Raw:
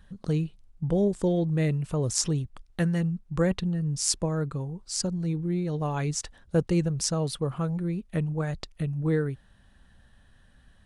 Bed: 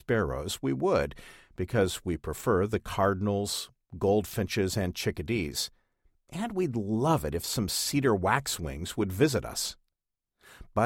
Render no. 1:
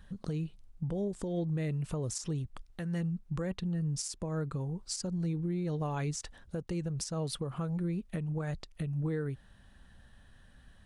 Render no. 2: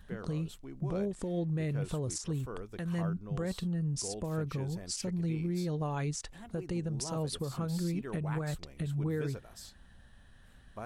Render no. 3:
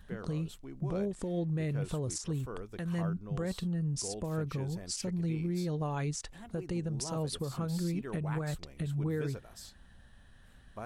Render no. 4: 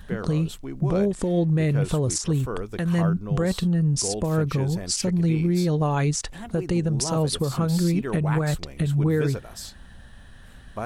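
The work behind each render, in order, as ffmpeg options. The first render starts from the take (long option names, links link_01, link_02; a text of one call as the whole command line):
ffmpeg -i in.wav -af "acompressor=threshold=-30dB:ratio=5,alimiter=level_in=2dB:limit=-24dB:level=0:latency=1:release=144,volume=-2dB" out.wav
ffmpeg -i in.wav -i bed.wav -filter_complex "[1:a]volume=-17.5dB[link_01];[0:a][link_01]amix=inputs=2:normalize=0" out.wav
ffmpeg -i in.wav -af anull out.wav
ffmpeg -i in.wav -af "volume=11.5dB" out.wav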